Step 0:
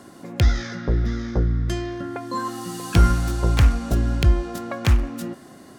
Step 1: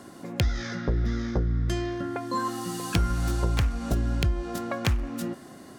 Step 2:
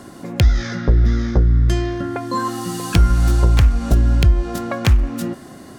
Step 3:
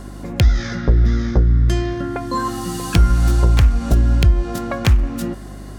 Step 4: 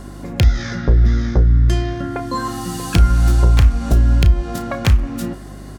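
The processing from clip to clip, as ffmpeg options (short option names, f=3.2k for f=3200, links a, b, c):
-af "acompressor=threshold=-20dB:ratio=6,volume=-1dB"
-af "lowshelf=f=79:g=10,volume=6.5dB"
-af "aeval=exprs='val(0)+0.0224*(sin(2*PI*50*n/s)+sin(2*PI*2*50*n/s)/2+sin(2*PI*3*50*n/s)/3+sin(2*PI*4*50*n/s)/4+sin(2*PI*5*50*n/s)/5)':c=same"
-filter_complex "[0:a]asplit=2[a][b];[b]adelay=33,volume=-11.5dB[c];[a][c]amix=inputs=2:normalize=0"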